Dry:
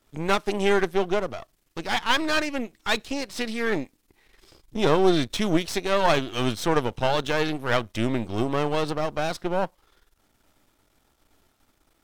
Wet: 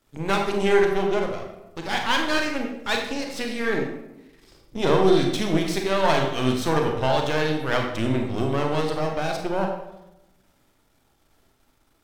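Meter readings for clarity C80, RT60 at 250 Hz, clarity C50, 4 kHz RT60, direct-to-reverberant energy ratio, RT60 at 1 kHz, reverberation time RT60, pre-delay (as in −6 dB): 7.0 dB, 1.2 s, 4.0 dB, 0.60 s, 1.5 dB, 0.85 s, 0.95 s, 28 ms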